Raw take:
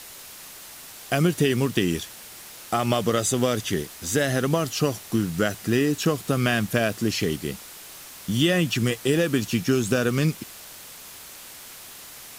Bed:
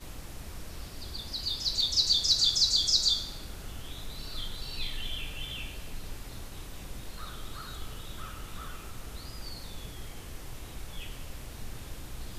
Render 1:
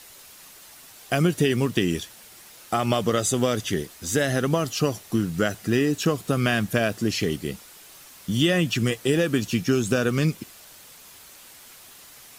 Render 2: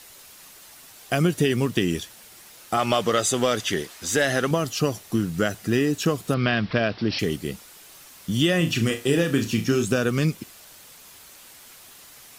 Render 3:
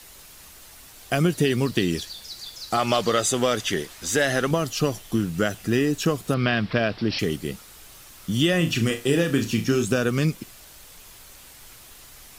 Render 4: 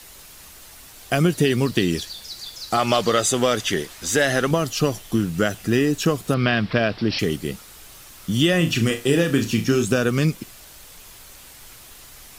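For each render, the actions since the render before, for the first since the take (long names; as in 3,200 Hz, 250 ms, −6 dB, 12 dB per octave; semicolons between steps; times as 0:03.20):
broadband denoise 6 dB, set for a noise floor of −43 dBFS
0:02.77–0:04.51: mid-hump overdrive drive 10 dB, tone 5,400 Hz, clips at −7 dBFS; 0:06.34–0:07.19: bad sample-rate conversion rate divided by 4×, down none, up filtered; 0:08.57–0:09.85: flutter between parallel walls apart 6.2 metres, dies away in 0.27 s
mix in bed −14 dB
level +2.5 dB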